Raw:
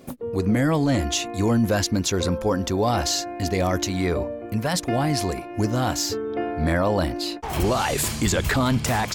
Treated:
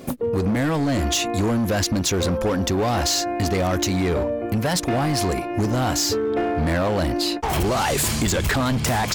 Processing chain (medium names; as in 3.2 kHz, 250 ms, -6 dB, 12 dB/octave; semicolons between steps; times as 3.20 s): in parallel at -4 dB: wavefolder -24 dBFS; on the sum: compression, threshold -23 dBFS, peak gain reduction 6 dB; trim +4 dB